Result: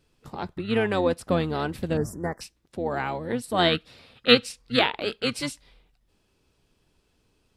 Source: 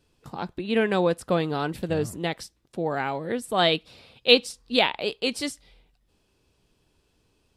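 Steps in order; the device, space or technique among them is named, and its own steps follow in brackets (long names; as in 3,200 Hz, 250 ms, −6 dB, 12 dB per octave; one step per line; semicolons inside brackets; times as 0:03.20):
octave pedal (pitch-shifted copies added −12 semitones −8 dB)
0:01.97–0:02.41: elliptic band-stop filter 1,800–5,400 Hz, stop band 40 dB
level −1 dB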